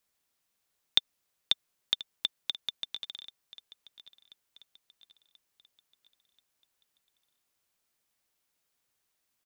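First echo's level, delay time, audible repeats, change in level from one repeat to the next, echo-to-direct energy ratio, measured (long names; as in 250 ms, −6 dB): −19.0 dB, 1,034 ms, 3, −6.5 dB, −18.0 dB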